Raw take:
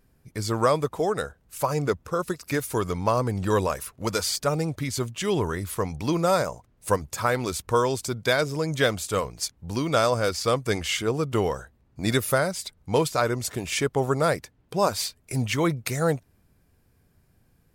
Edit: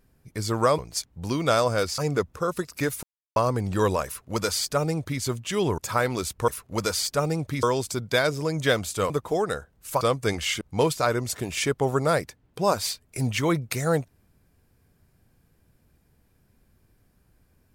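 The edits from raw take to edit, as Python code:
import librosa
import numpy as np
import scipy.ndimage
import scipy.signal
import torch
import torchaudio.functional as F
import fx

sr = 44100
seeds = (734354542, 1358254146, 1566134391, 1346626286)

y = fx.edit(x, sr, fx.swap(start_s=0.78, length_s=0.91, other_s=9.24, other_length_s=1.2),
    fx.silence(start_s=2.74, length_s=0.33),
    fx.duplicate(start_s=3.77, length_s=1.15, to_s=7.77),
    fx.cut(start_s=5.49, length_s=1.58),
    fx.cut(start_s=11.04, length_s=1.72), tone=tone)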